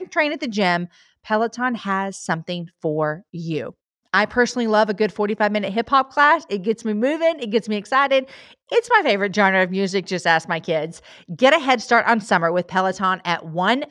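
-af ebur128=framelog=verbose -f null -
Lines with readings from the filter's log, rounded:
Integrated loudness:
  I:         -19.8 LUFS
  Threshold: -30.1 LUFS
Loudness range:
  LRA:         4.7 LU
  Threshold: -40.0 LUFS
  LRA low:   -23.4 LUFS
  LRA high:  -18.8 LUFS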